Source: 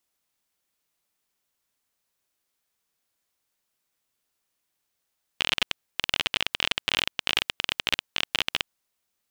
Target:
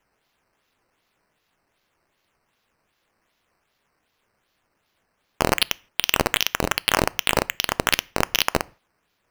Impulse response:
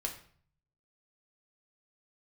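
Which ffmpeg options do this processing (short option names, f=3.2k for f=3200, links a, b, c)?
-filter_complex "[0:a]acrusher=samples=9:mix=1:aa=0.000001:lfo=1:lforange=9:lforate=2.6,acontrast=63,asplit=2[a][b];[1:a]atrim=start_sample=2205,afade=t=out:st=0.22:d=0.01,atrim=end_sample=10143[c];[b][c]afir=irnorm=-1:irlink=0,volume=-17.5dB[d];[a][d]amix=inputs=2:normalize=0"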